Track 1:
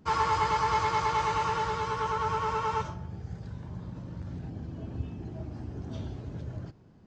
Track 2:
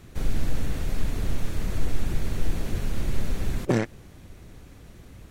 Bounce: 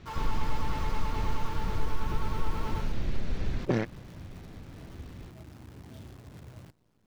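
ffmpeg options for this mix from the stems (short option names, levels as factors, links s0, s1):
-filter_complex "[0:a]asoftclip=type=hard:threshold=0.0501,acrusher=bits=8:dc=4:mix=0:aa=0.000001,volume=0.335[s0];[1:a]lowpass=f=5400:w=0.5412,lowpass=f=5400:w=1.3066,acompressor=threshold=0.0501:ratio=1.5,volume=0.841[s1];[s0][s1]amix=inputs=2:normalize=0"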